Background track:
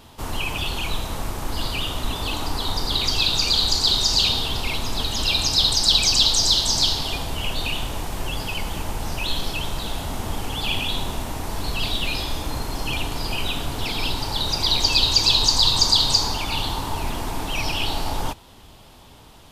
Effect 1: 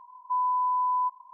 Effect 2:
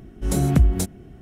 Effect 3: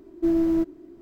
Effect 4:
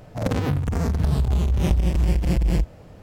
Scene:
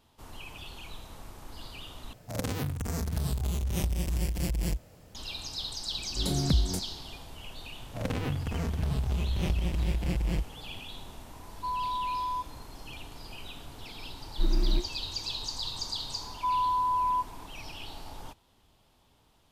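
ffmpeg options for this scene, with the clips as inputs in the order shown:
ffmpeg -i bed.wav -i cue0.wav -i cue1.wav -i cue2.wav -i cue3.wav -filter_complex "[4:a]asplit=2[link_01][link_02];[1:a]asplit=2[link_03][link_04];[0:a]volume=-18dB[link_05];[link_01]crystalizer=i=3.5:c=0[link_06];[link_02]equalizer=frequency=2700:width=1.2:gain=6[link_07];[3:a]afreqshift=-360[link_08];[link_05]asplit=2[link_09][link_10];[link_09]atrim=end=2.134[link_11];[link_06]atrim=end=3.02,asetpts=PTS-STARTPTS,volume=-10dB[link_12];[link_10]atrim=start=5.146[link_13];[2:a]atrim=end=1.21,asetpts=PTS-STARTPTS,volume=-9dB,afade=type=in:duration=0.004:curve=hsin,afade=type=out:start_time=1.206:duration=0.004:curve=hsin,adelay=5940[link_14];[link_07]atrim=end=3.02,asetpts=PTS-STARTPTS,volume=-9dB,afade=type=in:duration=0.004:curve=hsin,afade=type=out:start_time=3.016:duration=0.004:curve=hsin,adelay=7790[link_15];[link_03]atrim=end=1.33,asetpts=PTS-STARTPTS,volume=-6.5dB,afade=type=in:duration=0.004:curve=hsin,afade=type=out:start_time=1.326:duration=0.004:curve=hsin,adelay=11330[link_16];[link_08]atrim=end=1.01,asetpts=PTS-STARTPTS,volume=-1.5dB,afade=type=in:duration=0.004:curve=hsin,afade=type=out:start_time=1.006:duration=0.004:curve=hsin,adelay=14160[link_17];[link_04]atrim=end=1.33,asetpts=PTS-STARTPTS,volume=-1.5dB,afade=type=in:duration=0.004:curve=hsin,afade=type=out:start_time=1.326:duration=0.004:curve=hsin,adelay=16130[link_18];[link_11][link_12]acrossfade=duration=0.004:curve1=hsin:curve2=hsin[link_19];[link_19][link_13]acrossfade=duration=0.004:curve1=hsin:curve2=hsin[link_20];[link_20][link_14][link_15][link_16][link_17][link_18]amix=inputs=6:normalize=0" out.wav

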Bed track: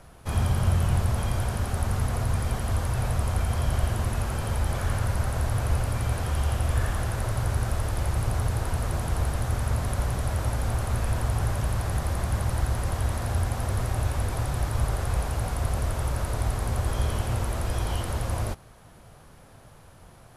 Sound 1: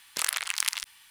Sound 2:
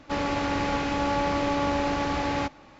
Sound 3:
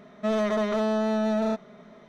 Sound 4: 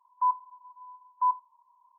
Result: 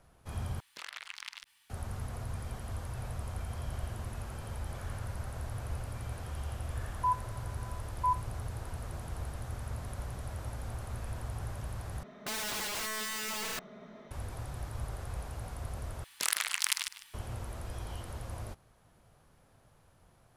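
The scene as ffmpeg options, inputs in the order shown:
ffmpeg -i bed.wav -i cue0.wav -i cue1.wav -i cue2.wav -i cue3.wav -filter_complex "[1:a]asplit=2[link_01][link_02];[0:a]volume=-13dB[link_03];[link_01]acrossover=split=5000[link_04][link_05];[link_05]acompressor=threshold=-41dB:ratio=4:attack=1:release=60[link_06];[link_04][link_06]amix=inputs=2:normalize=0[link_07];[4:a]equalizer=frequency=1000:width_type=o:width=0.77:gain=7[link_08];[3:a]aeval=exprs='(mod(33.5*val(0)+1,2)-1)/33.5':channel_layout=same[link_09];[link_02]aecho=1:1:153:0.2[link_10];[link_03]asplit=4[link_11][link_12][link_13][link_14];[link_11]atrim=end=0.604[link_15];[link_07]atrim=end=1.1,asetpts=PTS-STARTPTS,volume=-12dB[link_16];[link_12]atrim=start=1.696:end=12.034[link_17];[link_09]atrim=end=2.08,asetpts=PTS-STARTPTS,volume=-1.5dB[link_18];[link_13]atrim=start=14.106:end=16.044[link_19];[link_10]atrim=end=1.1,asetpts=PTS-STARTPTS,volume=-2.5dB[link_20];[link_14]atrim=start=17.136[link_21];[link_08]atrim=end=1.98,asetpts=PTS-STARTPTS,volume=-11.5dB,afade=type=in:duration=0.004:curve=hsin,afade=type=out:start_time=1.976:duration=0.004:curve=hsin,adelay=300762S[link_22];[link_15][link_16]acrossfade=duration=0.004:curve1=hsin:curve2=hsin[link_23];[link_23][link_17]acrossfade=duration=0.004:curve1=hsin:curve2=hsin[link_24];[link_24][link_18]acrossfade=duration=0.004:curve1=hsin:curve2=hsin[link_25];[link_25][link_19]acrossfade=duration=0.004:curve1=hsin:curve2=hsin[link_26];[link_26][link_20]acrossfade=duration=0.004:curve1=hsin:curve2=hsin[link_27];[link_27][link_21]acrossfade=duration=0.004:curve1=hsin:curve2=hsin[link_28];[link_28][link_22]amix=inputs=2:normalize=0" out.wav

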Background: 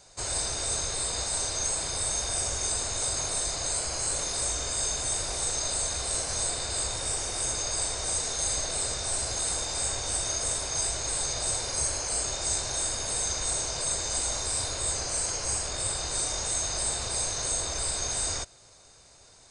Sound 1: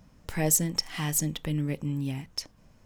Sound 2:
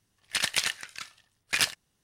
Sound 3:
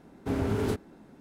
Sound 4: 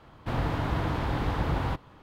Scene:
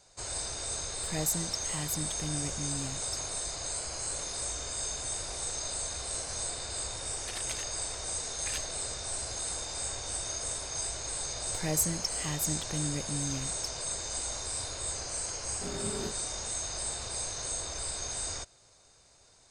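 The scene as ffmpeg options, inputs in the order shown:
ffmpeg -i bed.wav -i cue0.wav -i cue1.wav -i cue2.wav -filter_complex "[1:a]asplit=2[link_01][link_02];[0:a]volume=-6dB[link_03];[3:a]aecho=1:1:5.3:0.9[link_04];[link_01]atrim=end=2.85,asetpts=PTS-STARTPTS,volume=-7.5dB,afade=type=in:duration=0.004:curve=hsin,afade=type=out:start_time=2.846:duration=0.004:curve=hsin,adelay=750[link_05];[2:a]atrim=end=2.03,asetpts=PTS-STARTPTS,volume=-15.5dB,afade=type=in:duration=0.004:curve=hsin,afade=type=out:start_time=2.026:duration=0.004:curve=hsin,adelay=6930[link_06];[link_02]atrim=end=2.85,asetpts=PTS-STARTPTS,volume=-5.5dB,afade=type=in:duration=0.004:curve=hsin,afade=type=out:start_time=2.846:duration=0.004:curve=hsin,adelay=11260[link_07];[link_04]atrim=end=1.2,asetpts=PTS-STARTPTS,volume=-11dB,afade=type=in:duration=0.004:curve=hsin,afade=type=out:start_time=1.196:duration=0.004:curve=hsin,adelay=15350[link_08];[link_03][link_05][link_06][link_07][link_08]amix=inputs=5:normalize=0" out.wav

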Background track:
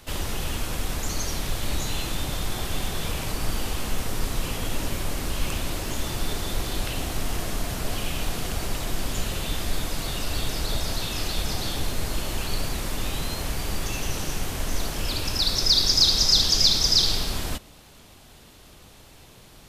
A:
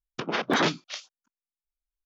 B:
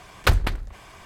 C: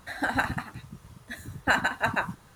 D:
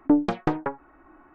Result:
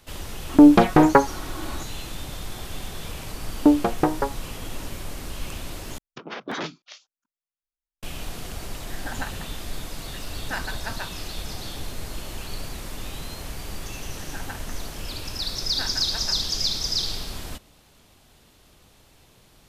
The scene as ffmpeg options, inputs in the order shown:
ffmpeg -i bed.wav -i cue0.wav -i cue1.wav -i cue2.wav -i cue3.wav -filter_complex "[4:a]asplit=2[link_01][link_02];[3:a]asplit=2[link_03][link_04];[0:a]volume=-6dB[link_05];[link_01]alimiter=level_in=20dB:limit=-1dB:release=50:level=0:latency=1[link_06];[link_02]equalizer=frequency=580:width_type=o:width=3:gain=7.5[link_07];[link_05]asplit=2[link_08][link_09];[link_08]atrim=end=5.984[link_10];[1:a]atrim=end=2.05,asetpts=PTS-STARTPTS,volume=-7.5dB[link_11];[link_09]atrim=start=8.026[link_12];[link_06]atrim=end=1.34,asetpts=PTS-STARTPTS,volume=-3.5dB,afade=type=in:duration=0.004:curve=hsin,afade=type=out:start_time=1.336:duration=0.004:curve=hsin,adelay=490[link_13];[link_07]atrim=end=1.34,asetpts=PTS-STARTPTS,volume=-2.5dB,afade=type=in:duration=0.004:curve=hsin,afade=type=out:start_time=1.336:duration=0.004:curve=hsin,adelay=3560[link_14];[link_03]atrim=end=2.55,asetpts=PTS-STARTPTS,volume=-8dB,afade=type=in:duration=0.004:curve=hsin,afade=type=out:start_time=2.546:duration=0.004:curve=hsin,adelay=8830[link_15];[link_04]atrim=end=2.55,asetpts=PTS-STARTPTS,volume=-12.5dB,afade=type=in:duration=0.004:curve=hsin,afade=type=out:start_time=2.546:duration=0.004:curve=hsin,adelay=14110[link_16];[link_10][link_11]acrossfade=duration=0.004:curve1=hsin:curve2=hsin[link_17];[link_17][link_12]acrossfade=duration=0.004:curve1=hsin:curve2=hsin[link_18];[link_18][link_13][link_14][link_15][link_16]amix=inputs=5:normalize=0" out.wav

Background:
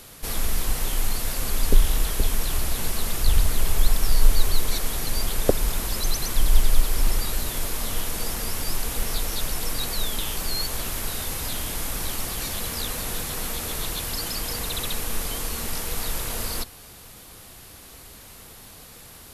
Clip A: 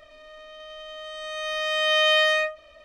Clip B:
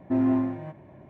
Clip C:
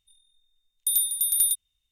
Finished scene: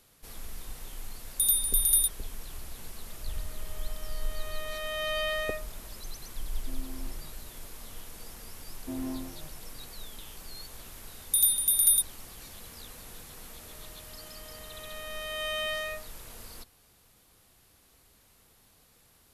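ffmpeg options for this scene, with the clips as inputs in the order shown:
ffmpeg -i bed.wav -i cue0.wav -i cue1.wav -i cue2.wav -filter_complex "[3:a]asplit=2[link_01][link_02];[1:a]asplit=2[link_03][link_04];[2:a]asplit=2[link_05][link_06];[0:a]volume=-17dB[link_07];[link_03]highshelf=frequency=2400:gain=-6.5[link_08];[link_05]acompressor=threshold=-24dB:ratio=6:attack=3.2:release=140:knee=1:detection=peak[link_09];[link_04]adynamicsmooth=sensitivity=5:basefreq=3500[link_10];[link_01]atrim=end=1.91,asetpts=PTS-STARTPTS,volume=-1.5dB,afade=type=in:duration=0.004:curve=hsin,afade=type=out:start_time=1.906:duration=0.004:curve=hsin,adelay=530[link_11];[link_08]atrim=end=2.84,asetpts=PTS-STARTPTS,volume=-9.5dB,afade=type=in:duration=0.004:curve=hsin,afade=type=out:start_time=2.836:duration=0.004:curve=hsin,adelay=3100[link_12];[link_09]atrim=end=1.09,asetpts=PTS-STARTPTS,volume=-18dB,afade=type=in:duration=0.004:curve=hsin,afade=type=out:start_time=1.086:duration=0.004:curve=hsin,adelay=6570[link_13];[link_06]atrim=end=1.09,asetpts=PTS-STARTPTS,volume=-13dB,afade=type=in:duration=0.004:curve=hsin,afade=type=out:start_time=1.086:duration=0.004:curve=hsin,adelay=8770[link_14];[link_02]atrim=end=1.91,asetpts=PTS-STARTPTS,afade=type=in:duration=0.004:curve=hsin,afade=type=out:start_time=1.906:duration=0.004:curve=hsin,adelay=10470[link_15];[link_10]atrim=end=2.84,asetpts=PTS-STARTPTS,volume=-13dB,afade=type=in:duration=0.004:curve=hsin,afade=type=out:start_time=2.836:duration=0.004:curve=hsin,adelay=13500[link_16];[link_07][link_11][link_12][link_13][link_14][link_15][link_16]amix=inputs=7:normalize=0" out.wav

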